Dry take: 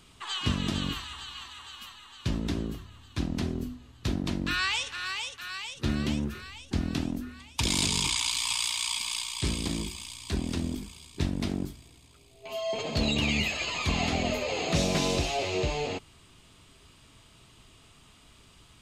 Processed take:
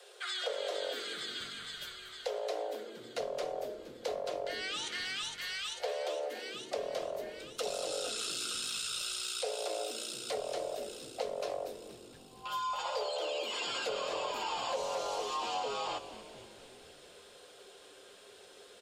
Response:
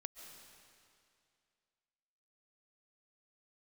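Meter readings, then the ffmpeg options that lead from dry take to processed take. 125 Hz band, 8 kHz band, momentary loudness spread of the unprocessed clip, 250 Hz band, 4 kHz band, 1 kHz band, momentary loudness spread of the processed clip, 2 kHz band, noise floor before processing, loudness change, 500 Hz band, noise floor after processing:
−28.5 dB, −7.5 dB, 14 LU, −20.5 dB, −6.5 dB, −0.5 dB, 19 LU, −8.0 dB, −57 dBFS, −7.0 dB, 0.0 dB, −56 dBFS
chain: -filter_complex "[0:a]aecho=1:1:5.8:0.37,acrossover=split=660[link_01][link_02];[link_02]alimiter=level_in=3dB:limit=-24dB:level=0:latency=1:release=14,volume=-3dB[link_03];[link_01][link_03]amix=inputs=2:normalize=0,acompressor=threshold=-33dB:ratio=6,afreqshift=370,asplit=7[link_04][link_05][link_06][link_07][link_08][link_09][link_10];[link_05]adelay=234,afreqshift=-100,volume=-14dB[link_11];[link_06]adelay=468,afreqshift=-200,volume=-18.4dB[link_12];[link_07]adelay=702,afreqshift=-300,volume=-22.9dB[link_13];[link_08]adelay=936,afreqshift=-400,volume=-27.3dB[link_14];[link_09]adelay=1170,afreqshift=-500,volume=-31.7dB[link_15];[link_10]adelay=1404,afreqshift=-600,volume=-36.2dB[link_16];[link_04][link_11][link_12][link_13][link_14][link_15][link_16]amix=inputs=7:normalize=0"

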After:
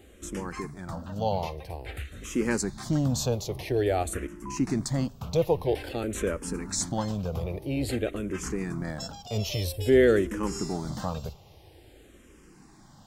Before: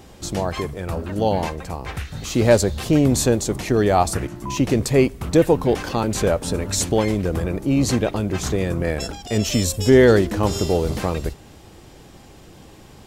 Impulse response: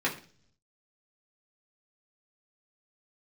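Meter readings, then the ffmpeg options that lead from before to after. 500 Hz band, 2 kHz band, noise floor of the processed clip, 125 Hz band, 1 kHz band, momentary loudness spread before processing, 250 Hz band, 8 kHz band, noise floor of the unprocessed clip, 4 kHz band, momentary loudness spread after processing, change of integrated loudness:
−8.5 dB, −8.0 dB, −54 dBFS, −9.0 dB, −10.0 dB, 11 LU, −9.5 dB, −8.5 dB, −45 dBFS, −9.0 dB, 12 LU, −9.0 dB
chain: -filter_complex "[0:a]asplit=2[link_01][link_02];[link_02]afreqshift=-0.5[link_03];[link_01][link_03]amix=inputs=2:normalize=1,volume=-6dB"

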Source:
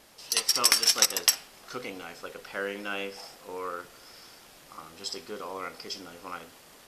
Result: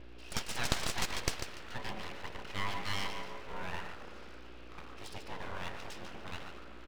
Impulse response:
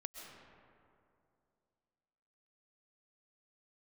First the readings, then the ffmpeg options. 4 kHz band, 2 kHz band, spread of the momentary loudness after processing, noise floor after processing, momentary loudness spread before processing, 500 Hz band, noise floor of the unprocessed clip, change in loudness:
−12.5 dB, −5.0 dB, 15 LU, −48 dBFS, 21 LU, −8.0 dB, −54 dBFS, −13.0 dB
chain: -filter_complex "[0:a]highpass=frequency=110:width=0.5412,highpass=frequency=110:width=1.3066,equalizer=frequency=280:width_type=q:width=4:gain=7,equalizer=frequency=490:width_type=q:width=4:gain=7,equalizer=frequency=1500:width_type=q:width=4:gain=6,equalizer=frequency=2600:width_type=q:width=4:gain=8,lowpass=frequency=3900:width=0.5412,lowpass=frequency=3900:width=1.3066,aecho=1:1:145|290|435:0.398|0.0955|0.0229,asplit=2[link_01][link_02];[1:a]atrim=start_sample=2205,lowpass=frequency=2400:width=0.5412,lowpass=frequency=2400:width=1.3066,adelay=116[link_03];[link_02][link_03]afir=irnorm=-1:irlink=0,volume=-5dB[link_04];[link_01][link_04]amix=inputs=2:normalize=0,aeval=exprs='val(0)+0.00891*(sin(2*PI*60*n/s)+sin(2*PI*2*60*n/s)/2+sin(2*PI*3*60*n/s)/3+sin(2*PI*4*60*n/s)/4+sin(2*PI*5*60*n/s)/5)':channel_layout=same,aeval=exprs='abs(val(0))':channel_layout=same,volume=-6dB"

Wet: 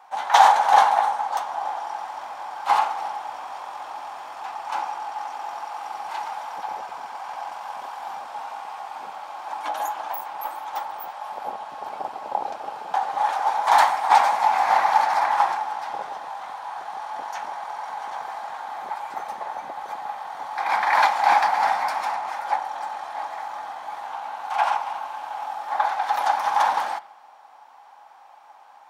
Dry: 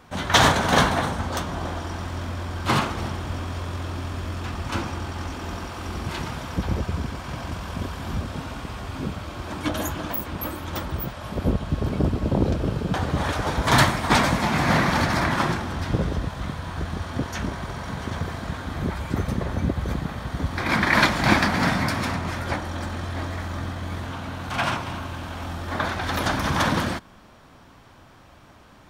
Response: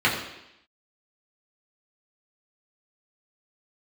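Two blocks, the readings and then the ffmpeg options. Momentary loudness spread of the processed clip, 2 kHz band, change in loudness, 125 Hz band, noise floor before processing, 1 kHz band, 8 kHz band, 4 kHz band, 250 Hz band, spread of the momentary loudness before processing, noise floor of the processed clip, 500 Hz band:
16 LU, −3.5 dB, +1.0 dB, below −35 dB, −50 dBFS, +7.5 dB, −6.5 dB, −6.5 dB, below −25 dB, 13 LU, −49 dBFS, −4.0 dB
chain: -filter_complex "[0:a]highpass=frequency=820:width_type=q:width=10,asplit=2[link_01][link_02];[1:a]atrim=start_sample=2205,asetrate=48510,aresample=44100[link_03];[link_02][link_03]afir=irnorm=-1:irlink=0,volume=-29.5dB[link_04];[link_01][link_04]amix=inputs=2:normalize=0,volume=-6.5dB"

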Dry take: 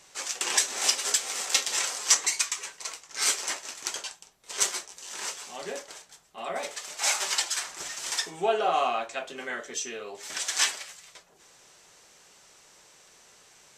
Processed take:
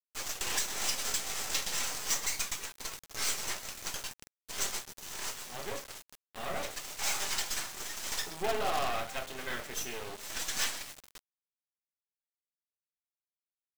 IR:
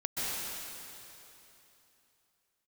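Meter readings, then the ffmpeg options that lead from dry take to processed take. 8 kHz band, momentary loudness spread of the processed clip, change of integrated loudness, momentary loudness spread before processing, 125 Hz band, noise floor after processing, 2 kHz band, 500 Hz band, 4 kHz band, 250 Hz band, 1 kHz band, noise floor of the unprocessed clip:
−8.0 dB, 11 LU, −7.0 dB, 15 LU, +7.0 dB, below −85 dBFS, −5.5 dB, −6.5 dB, −6.5 dB, −1.5 dB, −6.5 dB, −57 dBFS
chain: -filter_complex "[0:a]asplit=2[link_01][link_02];[1:a]atrim=start_sample=2205,afade=type=out:start_time=0.18:duration=0.01,atrim=end_sample=8379,lowpass=8600[link_03];[link_02][link_03]afir=irnorm=-1:irlink=0,volume=-10dB[link_04];[link_01][link_04]amix=inputs=2:normalize=0,acrusher=bits=4:dc=4:mix=0:aa=0.000001,volume=24dB,asoftclip=hard,volume=-24dB,volume=-1dB"

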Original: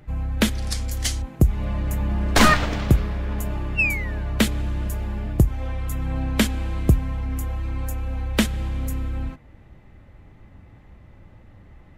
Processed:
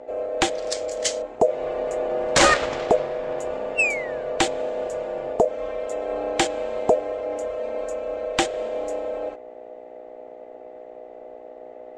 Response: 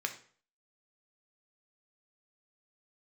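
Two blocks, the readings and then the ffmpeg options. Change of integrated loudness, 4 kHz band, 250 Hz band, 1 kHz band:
−0.5 dB, +0.5 dB, −7.0 dB, +3.0 dB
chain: -filter_complex "[0:a]aeval=exprs='val(0)+0.0141*(sin(2*PI*60*n/s)+sin(2*PI*2*60*n/s)/2+sin(2*PI*3*60*n/s)/3+sin(2*PI*4*60*n/s)/4+sin(2*PI*5*60*n/s)/5)':channel_layout=same,acrossover=split=840[link_01][link_02];[link_01]aeval=exprs='val(0)*sin(2*PI*560*n/s)':channel_layout=same[link_03];[link_02]adynamicsmooth=sensitivity=1.5:basefreq=4500[link_04];[link_03][link_04]amix=inputs=2:normalize=0,lowpass=frequency=7700:width_type=q:width=3.4"

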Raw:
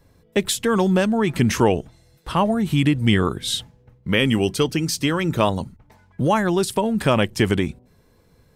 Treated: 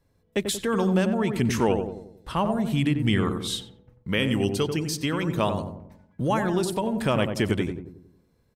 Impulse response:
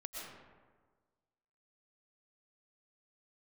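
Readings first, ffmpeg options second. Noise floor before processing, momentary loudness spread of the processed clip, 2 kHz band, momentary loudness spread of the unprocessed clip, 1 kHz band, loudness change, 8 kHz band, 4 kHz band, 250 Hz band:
−58 dBFS, 10 LU, −5.5 dB, 7 LU, −5.5 dB, −5.0 dB, −6.0 dB, −6.0 dB, −4.5 dB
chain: -filter_complex "[0:a]agate=range=-6dB:threshold=-50dB:ratio=16:detection=peak,asplit=2[link_01][link_02];[link_02]adelay=91,lowpass=frequency=980:poles=1,volume=-5dB,asplit=2[link_03][link_04];[link_04]adelay=91,lowpass=frequency=980:poles=1,volume=0.52,asplit=2[link_05][link_06];[link_06]adelay=91,lowpass=frequency=980:poles=1,volume=0.52,asplit=2[link_07][link_08];[link_08]adelay=91,lowpass=frequency=980:poles=1,volume=0.52,asplit=2[link_09][link_10];[link_10]adelay=91,lowpass=frequency=980:poles=1,volume=0.52,asplit=2[link_11][link_12];[link_12]adelay=91,lowpass=frequency=980:poles=1,volume=0.52,asplit=2[link_13][link_14];[link_14]adelay=91,lowpass=frequency=980:poles=1,volume=0.52[link_15];[link_01][link_03][link_05][link_07][link_09][link_11][link_13][link_15]amix=inputs=8:normalize=0,volume=-6dB"

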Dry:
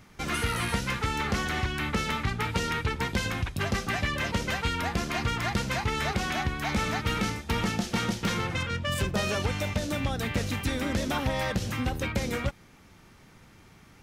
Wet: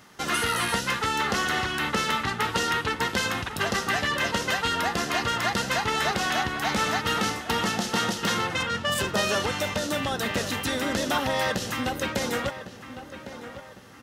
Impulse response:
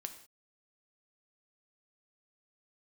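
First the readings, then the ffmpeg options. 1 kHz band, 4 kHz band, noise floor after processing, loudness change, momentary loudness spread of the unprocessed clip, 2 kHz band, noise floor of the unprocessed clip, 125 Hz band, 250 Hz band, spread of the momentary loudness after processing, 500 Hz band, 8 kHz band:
+5.5 dB, +6.0 dB, −45 dBFS, +3.5 dB, 2 LU, +4.5 dB, −55 dBFS, −5.0 dB, 0.0 dB, 4 LU, +4.0 dB, +6.0 dB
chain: -filter_complex "[0:a]highpass=frequency=410:poles=1,bandreject=frequency=2300:width=6.7,asplit=2[link_01][link_02];[link_02]adelay=1105,lowpass=frequency=2600:poles=1,volume=-12dB,asplit=2[link_03][link_04];[link_04]adelay=1105,lowpass=frequency=2600:poles=1,volume=0.42,asplit=2[link_05][link_06];[link_06]adelay=1105,lowpass=frequency=2600:poles=1,volume=0.42,asplit=2[link_07][link_08];[link_08]adelay=1105,lowpass=frequency=2600:poles=1,volume=0.42[link_09];[link_03][link_05][link_07][link_09]amix=inputs=4:normalize=0[link_10];[link_01][link_10]amix=inputs=2:normalize=0,volume=6dB"

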